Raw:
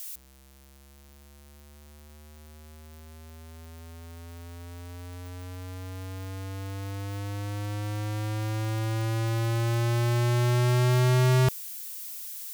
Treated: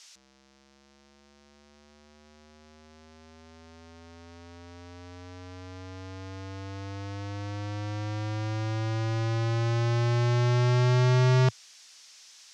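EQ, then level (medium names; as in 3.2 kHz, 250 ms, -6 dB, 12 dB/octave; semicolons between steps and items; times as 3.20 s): Chebyshev band-pass 110–5800 Hz, order 3; 0.0 dB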